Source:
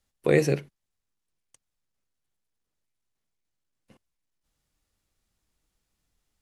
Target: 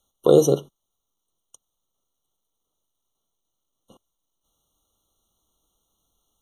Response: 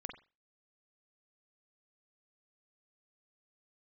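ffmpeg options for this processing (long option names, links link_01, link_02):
-af "bass=frequency=250:gain=-8,treble=frequency=4000:gain=3,afftfilt=real='re*eq(mod(floor(b*sr/1024/1400),2),0)':imag='im*eq(mod(floor(b*sr/1024/1400),2),0)':win_size=1024:overlap=0.75,volume=8dB"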